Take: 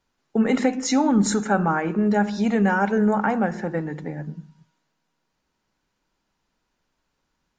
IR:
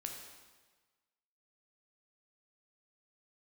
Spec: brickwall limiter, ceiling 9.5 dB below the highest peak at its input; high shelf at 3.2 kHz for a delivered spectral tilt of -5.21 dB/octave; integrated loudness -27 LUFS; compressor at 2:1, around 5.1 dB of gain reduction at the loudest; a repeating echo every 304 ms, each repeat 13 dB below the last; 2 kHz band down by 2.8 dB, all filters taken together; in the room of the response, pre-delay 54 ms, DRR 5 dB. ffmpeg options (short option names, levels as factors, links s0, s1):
-filter_complex "[0:a]equalizer=f=2000:t=o:g=-5.5,highshelf=f=3200:g=5,acompressor=threshold=0.0631:ratio=2,alimiter=limit=0.0841:level=0:latency=1,aecho=1:1:304|608|912:0.224|0.0493|0.0108,asplit=2[s0][s1];[1:a]atrim=start_sample=2205,adelay=54[s2];[s1][s2]afir=irnorm=-1:irlink=0,volume=0.668[s3];[s0][s3]amix=inputs=2:normalize=0,volume=1.19"